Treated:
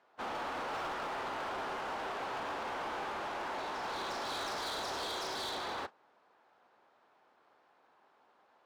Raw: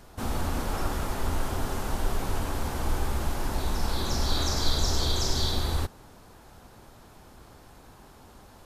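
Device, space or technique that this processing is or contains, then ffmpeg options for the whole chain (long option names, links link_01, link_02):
walkie-talkie: -af "highpass=560,lowpass=2500,asoftclip=type=hard:threshold=-37.5dB,agate=range=-13dB:threshold=-45dB:ratio=16:detection=peak,volume=2dB"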